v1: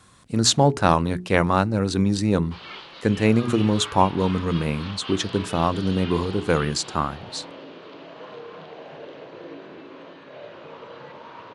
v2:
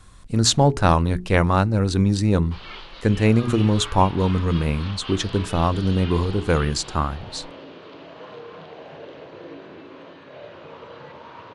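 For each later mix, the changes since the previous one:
master: remove HPF 130 Hz 12 dB/oct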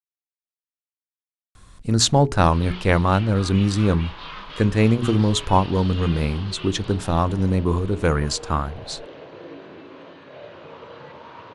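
speech: entry +1.55 s

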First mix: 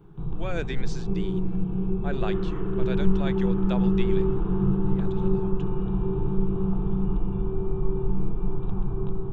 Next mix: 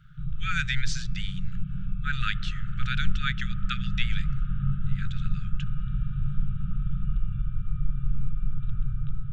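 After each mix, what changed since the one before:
speech +9.5 dB; master: add brick-wall FIR band-stop 170–1200 Hz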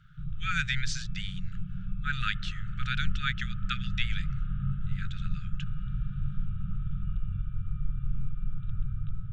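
reverb: off

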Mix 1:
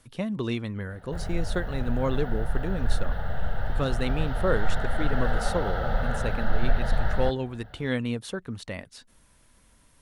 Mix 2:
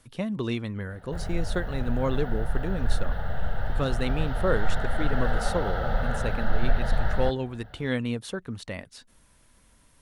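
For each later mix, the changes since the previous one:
none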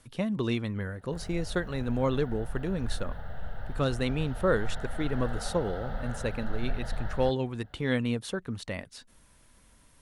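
background -9.5 dB

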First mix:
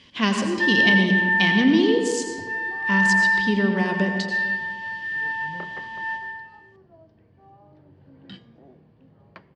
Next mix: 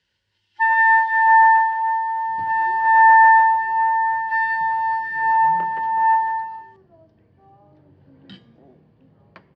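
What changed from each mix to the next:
speech: muted; first sound: remove HPF 1500 Hz 24 dB/oct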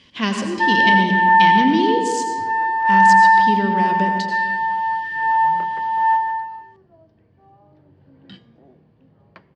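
speech: unmuted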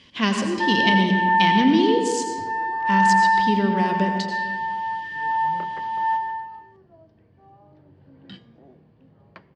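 first sound -6.0 dB

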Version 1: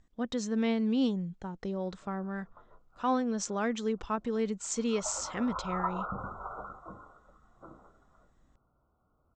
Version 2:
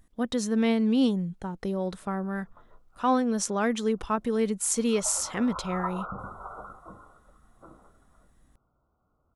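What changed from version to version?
speech +5.0 dB; master: remove steep low-pass 7800 Hz 72 dB/oct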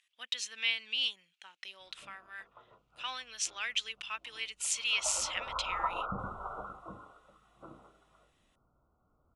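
speech: add resonant high-pass 2700 Hz, resonance Q 3.9; master: add air absorption 60 m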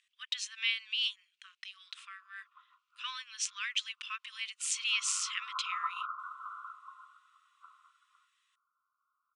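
speech: add Chebyshev low-pass 9400 Hz, order 4; master: add brick-wall FIR high-pass 1000 Hz

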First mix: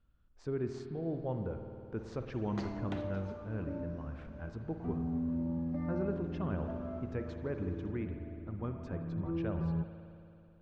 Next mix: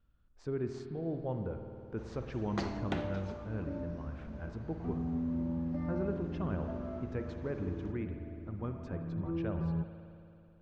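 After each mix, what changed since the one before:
first sound +7.0 dB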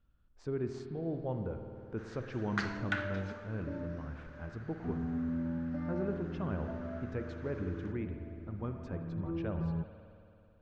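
first sound: add resonant high-pass 1500 Hz, resonance Q 5.1; second sound: send off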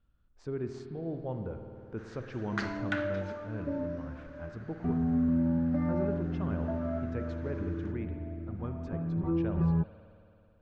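second sound +8.0 dB

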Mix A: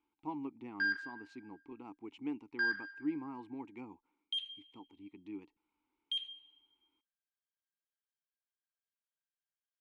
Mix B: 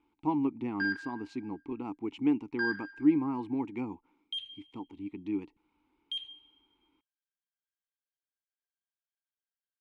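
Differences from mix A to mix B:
speech +8.5 dB; master: add low shelf 320 Hz +7 dB

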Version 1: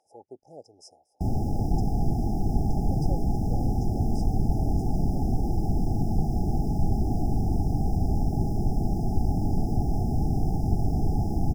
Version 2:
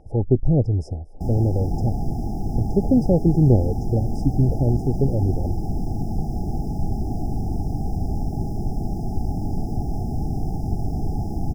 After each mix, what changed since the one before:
speech: remove HPF 1500 Hz 12 dB/oct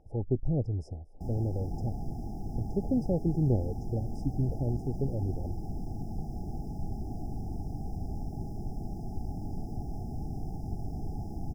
speech -11.0 dB; background -11.5 dB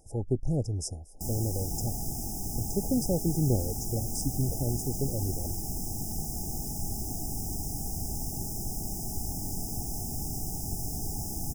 master: remove air absorption 400 m

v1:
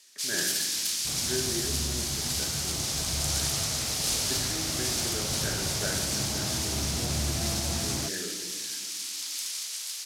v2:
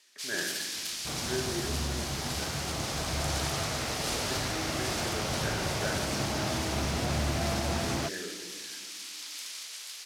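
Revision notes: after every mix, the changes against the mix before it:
second sound +5.5 dB; master: add tone controls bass -6 dB, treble -9 dB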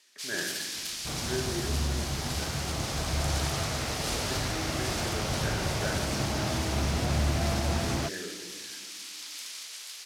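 master: add low shelf 100 Hz +7.5 dB

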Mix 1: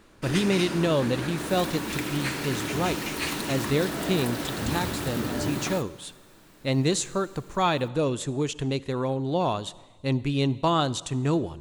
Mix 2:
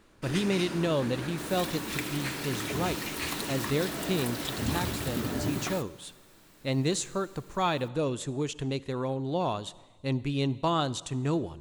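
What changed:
speech -4.0 dB; first sound -5.0 dB

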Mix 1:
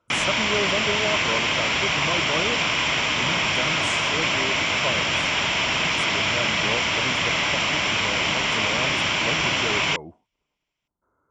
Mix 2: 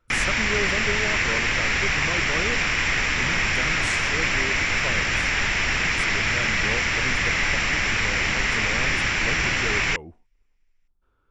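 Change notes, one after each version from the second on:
speech: remove brick-wall FIR band-stop 2200–5800 Hz; master: remove speaker cabinet 110–9900 Hz, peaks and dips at 160 Hz +3 dB, 300 Hz +3 dB, 630 Hz +8 dB, 1000 Hz +7 dB, 1800 Hz -8 dB, 3200 Hz +9 dB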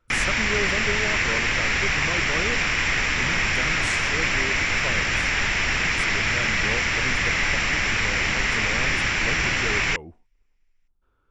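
none

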